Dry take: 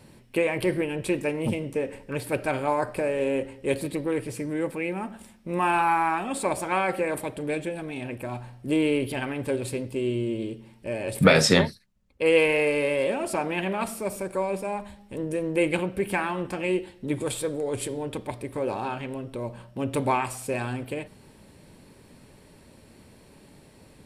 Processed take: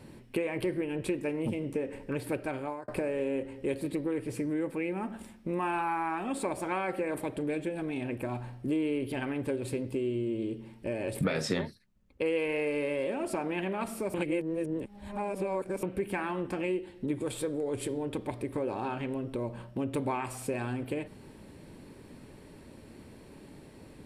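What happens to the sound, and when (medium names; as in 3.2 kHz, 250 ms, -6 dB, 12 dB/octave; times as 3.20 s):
2.32–2.88 s: fade out
14.14–15.83 s: reverse
whole clip: FFT filter 190 Hz 0 dB, 310 Hz +4 dB, 590 Hz -1 dB, 1.8 kHz -1 dB, 5.8 kHz -5 dB; compression 3:1, threshold -32 dBFS; trim +1 dB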